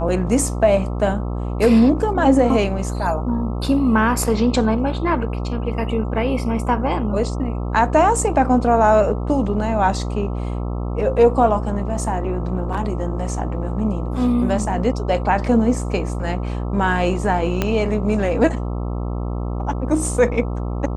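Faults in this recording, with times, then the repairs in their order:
buzz 60 Hz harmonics 22 -24 dBFS
17.62 pop -5 dBFS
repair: de-click; de-hum 60 Hz, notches 22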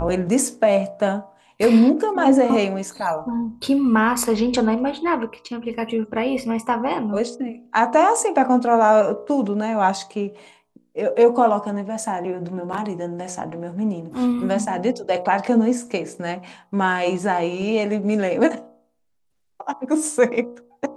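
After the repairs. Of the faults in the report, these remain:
17.62 pop

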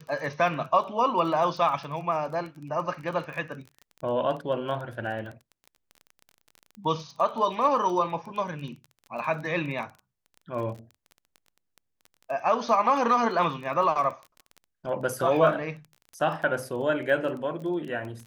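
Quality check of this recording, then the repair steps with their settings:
crackle 21/s -35 dBFS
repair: de-click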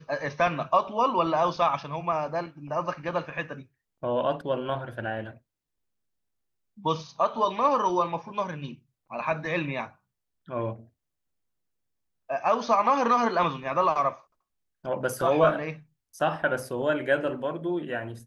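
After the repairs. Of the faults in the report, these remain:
none

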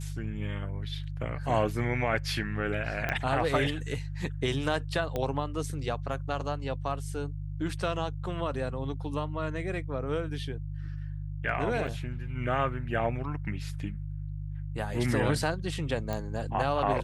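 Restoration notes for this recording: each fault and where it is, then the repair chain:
hum 50 Hz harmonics 3 -36 dBFS
3.09 pop -16 dBFS
5.16 pop -18 dBFS
11.87–11.88 gap 6.3 ms
16.13 pop -19 dBFS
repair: de-click; de-hum 50 Hz, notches 3; interpolate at 11.87, 6.3 ms

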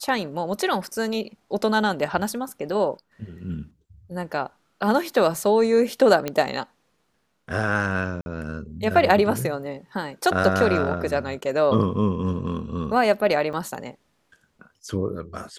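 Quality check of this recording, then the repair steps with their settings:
6.28 pop -11 dBFS
8.21–8.26 gap 51 ms
13.53–13.54 gap 5.8 ms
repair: de-click; interpolate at 8.21, 51 ms; interpolate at 13.53, 5.8 ms

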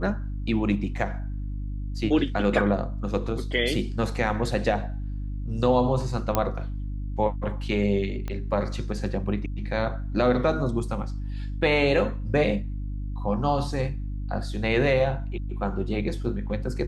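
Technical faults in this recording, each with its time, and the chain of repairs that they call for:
hum 50 Hz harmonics 6 -31 dBFS
6.35 pop -8 dBFS
8.28 pop -19 dBFS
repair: de-click; de-hum 50 Hz, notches 6

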